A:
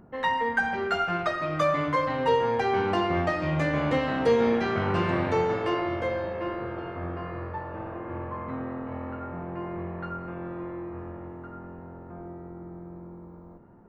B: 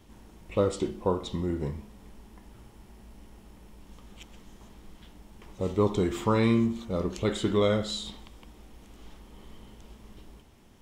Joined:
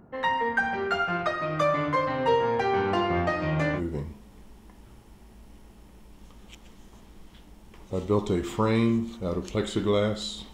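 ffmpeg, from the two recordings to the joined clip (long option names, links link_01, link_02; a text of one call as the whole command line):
ffmpeg -i cue0.wav -i cue1.wav -filter_complex "[0:a]apad=whole_dur=10.53,atrim=end=10.53,atrim=end=3.82,asetpts=PTS-STARTPTS[link_01];[1:a]atrim=start=1.4:end=8.21,asetpts=PTS-STARTPTS[link_02];[link_01][link_02]acrossfade=duration=0.1:curve1=tri:curve2=tri" out.wav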